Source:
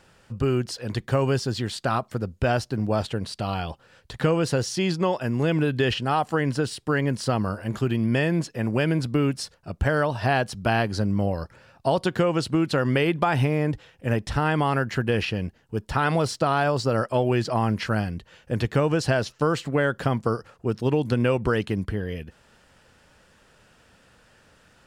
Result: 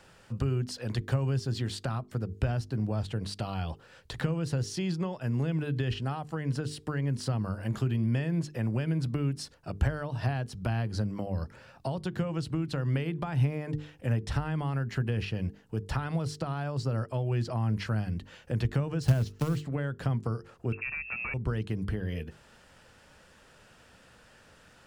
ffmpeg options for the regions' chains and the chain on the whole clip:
-filter_complex "[0:a]asettb=1/sr,asplit=3[s0][s1][s2];[s0]atrim=end=19.024[s3];[s1]atrim=start=19.02:end=19.63,asetpts=PTS-STARTPTS,afade=t=in:d=0.004:c=qsin,afade=t=out:st=0.606:d=0.004:c=qsin,lowshelf=f=400:g=6,acrusher=bits=3:mode=log:mix=0:aa=0.000001[s4];[s2]atrim=start=19.626[s5];[s3][s4]acrossfade=d=0.004:c1=hsin:c2=qsin[s6];[s6][s5]acrossfade=d=0.004:c1=qsin:c2=hsin,asettb=1/sr,asplit=3[s7][s8][s9];[s7]atrim=end=20.724[s10];[s8]atrim=start=20.72:end=21.34,asetpts=PTS-STARTPTS,afade=t=in:d=0.004:c=qsin,afade=t=out:st=0.616:d=0.004:c=qsin,lowshelf=f=450:g=-9.5,aeval=exprs='0.211*sin(PI/2*2.51*val(0)/0.211)':c=same,lowpass=f=2400:t=q:w=0.5098,lowpass=f=2400:t=q:w=0.6013,lowpass=f=2400:t=q:w=0.9,lowpass=f=2400:t=q:w=2.563,afreqshift=-2800[s11];[s9]atrim=start=21.336[s12];[s10][s11]acrossfade=d=0.004:c1=hsin:c2=qsin[s13];[s13][s12]acrossfade=d=0.004:c1=qsin:c2=hsin,bandreject=f=50:t=h:w=6,bandreject=f=100:t=h:w=6,bandreject=f=150:t=h:w=6,bandreject=f=200:t=h:w=6,bandreject=f=250:t=h:w=6,bandreject=f=300:t=h:w=6,bandreject=f=350:t=h:w=6,bandreject=f=400:t=h:w=6,bandreject=f=450:t=h:w=6,acrossover=split=170[s14][s15];[s15]acompressor=threshold=0.0178:ratio=6[s16];[s14][s16]amix=inputs=2:normalize=0"

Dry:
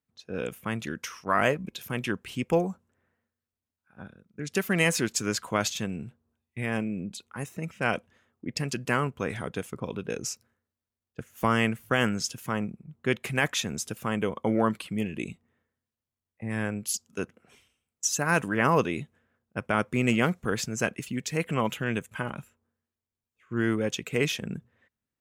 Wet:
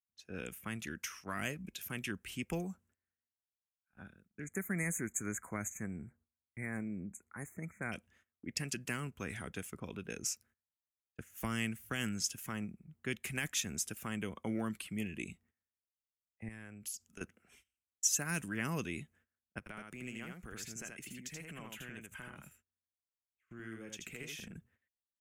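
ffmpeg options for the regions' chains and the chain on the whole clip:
-filter_complex "[0:a]asettb=1/sr,asplit=3[s0][s1][s2];[s0]atrim=end=4.444[s3];[s1]atrim=start=4.44:end=7.92,asetpts=PTS-STARTPTS,afade=t=in:d=0.004:c=qsin,afade=t=out:st=3.476:d=0.004:c=qsin,asuperstop=centerf=3900:order=20:qfactor=0.95,highshelf=f=4900:g=-6.5[s4];[s2]atrim=start=7.916[s5];[s3][s4]acrossfade=d=0.004:c1=hsin:c2=qsin[s6];[s6][s5]acrossfade=d=0.004:c1=qsin:c2=hsin,asettb=1/sr,asplit=3[s7][s8][s9];[s7]atrim=end=16.484[s10];[s8]atrim=start=16.48:end=17.21,asetpts=PTS-STARTPTS,afade=t=in:d=0.004:c=qsin,afade=t=out:st=0.726:d=0.004:c=qsin,lowshelf=f=66:g=8.5,acompressor=threshold=0.0141:ratio=10:attack=3.2:release=140:knee=1:detection=peak[s11];[s9]atrim=start=17.206[s12];[s10][s11]acrossfade=d=0.004:c1=hsin:c2=qsin[s13];[s13][s12]acrossfade=d=0.004:c1=qsin:c2=hsin,asettb=1/sr,asplit=3[s14][s15][s16];[s14]atrim=end=19.584[s17];[s15]atrim=start=19.58:end=24.56,asetpts=PTS-STARTPTS,afade=t=in:d=0.004:c=qsin,afade=t=out:st=4.976:d=0.004:c=qsin,acompressor=threshold=0.01:ratio=3:attack=3.2:release=140:knee=1:detection=peak,aecho=1:1:80:0.668,atrim=end_sample=219618[s18];[s16]atrim=start=24.556[s19];[s17][s18]acrossfade=d=0.004:c1=hsin:c2=qsin[s20];[s20][s19]acrossfade=d=0.004:c1=qsin:c2=hsin,agate=range=0.158:threshold=0.00112:ratio=16:detection=peak,equalizer=f=125:t=o:w=1:g=-10,equalizer=f=250:t=o:w=1:g=-5,equalizer=f=500:t=o:w=1:g=-10,equalizer=f=1000:t=o:w=1:g=-9,equalizer=f=4000:t=o:w=1:g=-8,acrossover=split=300|3000[s21][s22][s23];[s22]acompressor=threshold=0.00794:ratio=3[s24];[s21][s24][s23]amix=inputs=3:normalize=0"

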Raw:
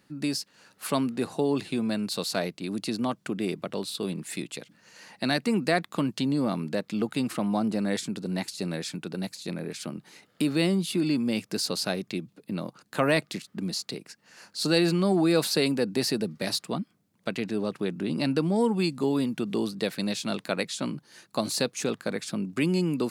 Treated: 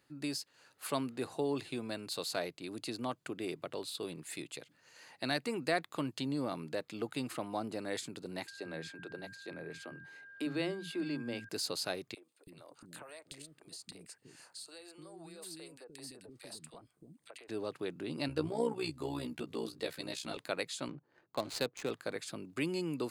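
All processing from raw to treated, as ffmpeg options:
-filter_complex "[0:a]asettb=1/sr,asplit=3[s0][s1][s2];[s0]atrim=end=8.474[s3];[s1]atrim=start=8.47:end=11.49,asetpts=PTS-STARTPTS,afade=t=in:d=0.004:c=qsin,afade=t=out:st=3.016:d=0.004:c=qsin,lowpass=f=2600:p=1,acrossover=split=220[s4][s5];[s4]adelay=50[s6];[s6][s5]amix=inputs=2:normalize=0,atrim=end_sample=133182,aeval=exprs='val(0)+0.00631*sin(2*PI*1600*n/s)':c=same[s7];[s2]atrim=start=11.486[s8];[s3][s7]acrossfade=d=0.004:c1=hsin:c2=qsin[s9];[s9][s8]acrossfade=d=0.004:c1=qsin:c2=hsin,asettb=1/sr,asplit=3[s10][s11][s12];[s10]atrim=end=12.144[s13];[s11]atrim=start=12.14:end=17.49,asetpts=PTS-STARTPTS,afade=t=in:d=0.004:c=qsin,afade=t=out:st=5.346:d=0.004:c=qsin,equalizer=f=8700:w=5.5:g=13.5,acompressor=threshold=0.0158:ratio=12:attack=3.2:release=140:knee=1:detection=peak,acrossover=split=370|1700[s14][s15][s16];[s15]adelay=30[s17];[s14]adelay=330[s18];[s18][s17][s16]amix=inputs=3:normalize=0,atrim=end_sample=235935[s19];[s12]atrim=start=17.486[s20];[s13][s19]acrossfade=d=0.004:c1=hsin:c2=qsin[s21];[s21][s20]acrossfade=d=0.004:c1=qsin:c2=hsin,asettb=1/sr,asplit=3[s22][s23][s24];[s22]atrim=end=18.284[s25];[s23]atrim=start=18.28:end=20.37,asetpts=PTS-STARTPTS,afade=t=in:d=0.004:c=qsin,afade=t=out:st=2.086:d=0.004:c=qsin,asplit=2[s26][s27];[s27]adelay=13,volume=0.668[s28];[s26][s28]amix=inputs=2:normalize=0,atrim=end_sample=92169,tremolo=f=62:d=0.667[s29];[s24]atrim=start=20.366[s30];[s25][s29]acrossfade=d=0.004:c1=hsin:c2=qsin[s31];[s31][s30]acrossfade=d=0.004:c1=qsin:c2=hsin,asettb=1/sr,asplit=3[s32][s33][s34];[s32]atrim=end=20.884[s35];[s33]atrim=start=20.88:end=21.91,asetpts=PTS-STARTPTS,afade=t=in:d=0.004:c=qsin,afade=t=out:st=1.026:d=0.004:c=qsin,highpass=100,adynamicsmooth=sensitivity=7.5:basefreq=840[s36];[s34]atrim=start=21.906[s37];[s35][s36]acrossfade=d=0.004:c1=hsin:c2=qsin[s38];[s38][s37]acrossfade=d=0.004:c1=qsin:c2=hsin,equalizer=f=200:t=o:w=0.43:g=-14.5,bandreject=f=5600:w=12,volume=0.447"

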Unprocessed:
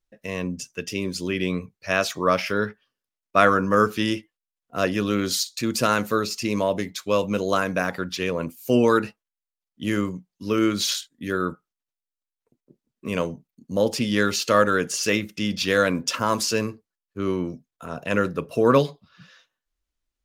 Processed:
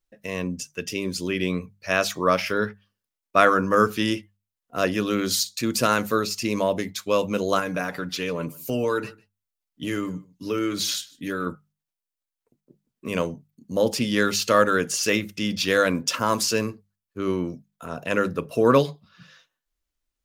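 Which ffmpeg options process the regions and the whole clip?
-filter_complex "[0:a]asettb=1/sr,asplit=3[s0][s1][s2];[s0]atrim=end=7.594[s3];[s1]atrim=start=7.59:end=11.47,asetpts=PTS-STARTPTS,afade=t=in:d=0.004:c=qsin,afade=t=out:st=3.876:d=0.004:c=qsin,aecho=1:1:6.8:0.47,atrim=end_sample=171108,acompressor=threshold=0.0562:ratio=2:attack=3.2:release=140:knee=1:detection=peak,aecho=1:1:151:0.0668,atrim=end_sample=171108[s4];[s2]atrim=start=11.466[s5];[s3][s4]acrossfade=d=0.004:c1=hsin:c2=qsin[s6];[s6][s5]acrossfade=d=0.004:c1=qsin:c2=hsin,highshelf=f=9900:g=4.5,bandreject=f=50:t=h:w=6,bandreject=f=100:t=h:w=6,bandreject=f=150:t=h:w=6,bandreject=f=200:t=h:w=6"

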